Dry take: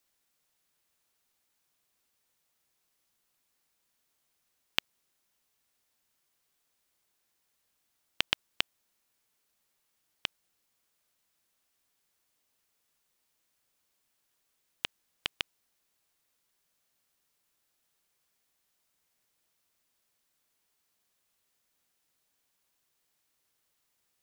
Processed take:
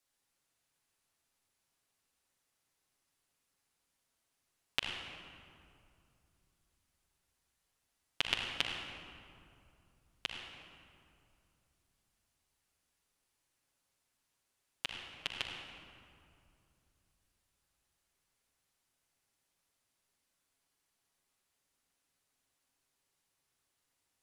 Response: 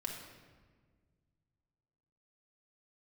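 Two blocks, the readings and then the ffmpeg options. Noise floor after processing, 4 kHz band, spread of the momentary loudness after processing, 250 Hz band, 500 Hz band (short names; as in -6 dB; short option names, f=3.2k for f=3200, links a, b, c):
-83 dBFS, -3.0 dB, 20 LU, -1.0 dB, -2.0 dB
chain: -filter_complex "[1:a]atrim=start_sample=2205,asetrate=23814,aresample=44100[a];[0:a][a]afir=irnorm=-1:irlink=0,volume=-6dB"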